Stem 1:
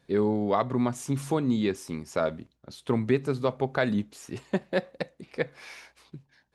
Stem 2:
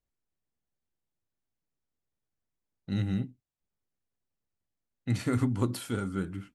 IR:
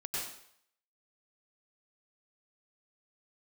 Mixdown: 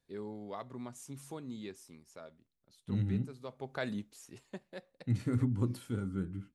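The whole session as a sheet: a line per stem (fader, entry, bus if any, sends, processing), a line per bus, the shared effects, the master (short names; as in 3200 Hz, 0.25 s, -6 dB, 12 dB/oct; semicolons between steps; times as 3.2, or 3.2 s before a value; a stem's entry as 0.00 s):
2.36 s -18 dB -> 2.98 s -8.5 dB -> 5.15 s -8.5 dB -> 5.5 s -19 dB, 0.00 s, no send, high shelf 4800 Hz +10.5 dB; auto duck -13 dB, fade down 1.20 s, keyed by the second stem
-12.0 dB, 0.00 s, no send, low shelf 410 Hz +11 dB; notch 690 Hz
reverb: off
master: dry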